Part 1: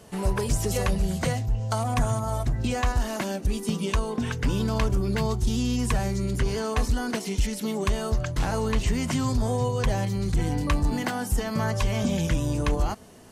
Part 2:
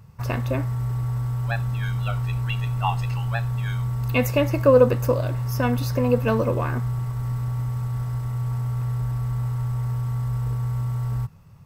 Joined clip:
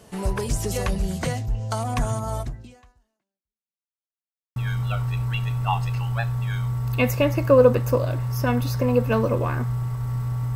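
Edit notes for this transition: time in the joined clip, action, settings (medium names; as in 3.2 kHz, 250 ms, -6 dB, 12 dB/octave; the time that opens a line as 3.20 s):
part 1
2.40–3.92 s: fade out exponential
3.92–4.56 s: mute
4.56 s: go over to part 2 from 1.72 s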